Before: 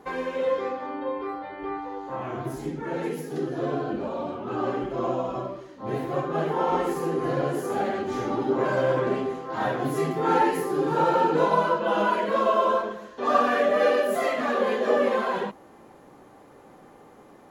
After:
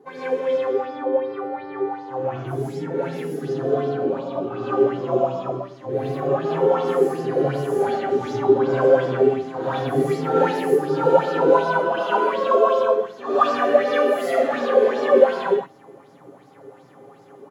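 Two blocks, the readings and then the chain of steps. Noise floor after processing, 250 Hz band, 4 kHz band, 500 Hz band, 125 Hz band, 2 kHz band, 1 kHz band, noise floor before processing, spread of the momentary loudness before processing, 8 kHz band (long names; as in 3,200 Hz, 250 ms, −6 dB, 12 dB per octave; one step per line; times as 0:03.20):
−48 dBFS, +2.5 dB, +2.0 dB, +6.5 dB, +4.5 dB, +1.5 dB, +1.5 dB, −51 dBFS, 11 LU, can't be measured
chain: high-pass filter 85 Hz 24 dB per octave
low-shelf EQ 420 Hz +7.5 dB
comb filter 7.3 ms, depth 53%
reverb whose tail is shaped and stops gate 170 ms rising, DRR −8 dB
auto-filter bell 2.7 Hz 370–5,400 Hz +12 dB
level −12.5 dB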